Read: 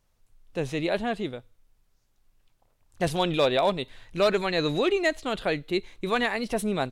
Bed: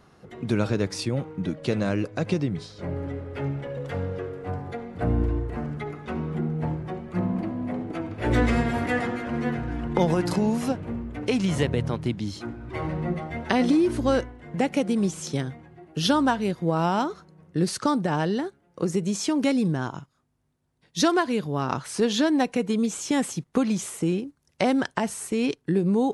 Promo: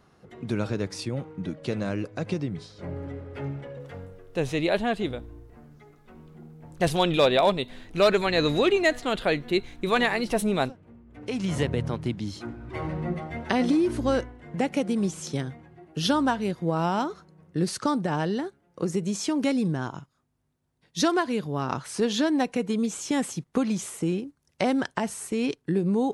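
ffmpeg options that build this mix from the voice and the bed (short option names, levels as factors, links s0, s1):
-filter_complex "[0:a]adelay=3800,volume=1.33[s0];[1:a]volume=4.47,afade=t=out:st=3.53:d=0.69:silence=0.177828,afade=t=in:st=11.06:d=0.51:silence=0.141254[s1];[s0][s1]amix=inputs=2:normalize=0"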